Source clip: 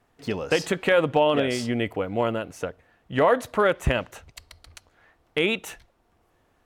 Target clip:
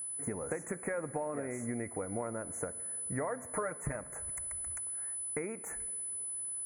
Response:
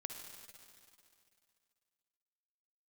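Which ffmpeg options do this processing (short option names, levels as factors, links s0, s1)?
-filter_complex "[0:a]aeval=exprs='val(0)+0.0158*sin(2*PI*10000*n/s)':c=same,asettb=1/sr,asplit=3[s0][s1][s2];[s0]atrim=end=3.534[s3];[s1]atrim=start=3.53:end=3.96,asetpts=PTS-STARTPTS,afade=t=in:d=0.004:c=qsin,afade=t=out:st=0.426:d=0.004:c=qsin,aecho=1:1:6.6:0.97,atrim=end_sample=18963[s4];[s2]atrim=start=3.956[s5];[s3][s4]acrossfade=d=0.004:c1=hsin:c2=qsin[s6];[s6][s5]acrossfade=d=0.004:c1=qsin:c2=hsin,acompressor=threshold=0.0224:ratio=6,asuperstop=centerf=3800:order=12:qfactor=0.88,asplit=2[s7][s8];[1:a]atrim=start_sample=2205[s9];[s8][s9]afir=irnorm=-1:irlink=0,volume=0.422[s10];[s7][s10]amix=inputs=2:normalize=0,volume=0.668"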